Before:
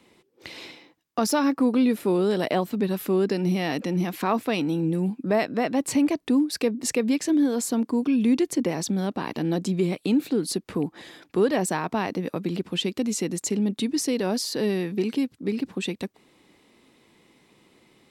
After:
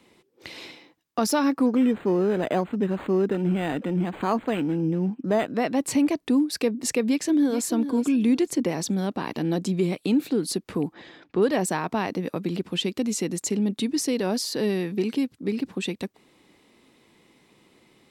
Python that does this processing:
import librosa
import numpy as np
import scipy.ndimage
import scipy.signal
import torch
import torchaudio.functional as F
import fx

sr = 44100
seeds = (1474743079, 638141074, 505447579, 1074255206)

y = fx.resample_linear(x, sr, factor=8, at=(1.66, 5.52))
y = fx.echo_throw(y, sr, start_s=7.07, length_s=0.58, ms=430, feedback_pct=25, wet_db=-11.0)
y = fx.air_absorb(y, sr, metres=150.0, at=(10.93, 11.41), fade=0.02)